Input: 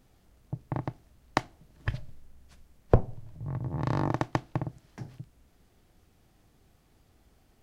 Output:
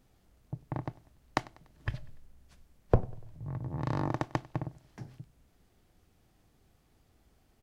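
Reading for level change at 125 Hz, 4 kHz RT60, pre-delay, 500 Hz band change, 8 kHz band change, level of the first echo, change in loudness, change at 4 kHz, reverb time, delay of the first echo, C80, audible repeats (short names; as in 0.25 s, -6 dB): -3.5 dB, none, none, -3.5 dB, n/a, -23.0 dB, -3.5 dB, -3.5 dB, none, 97 ms, none, 2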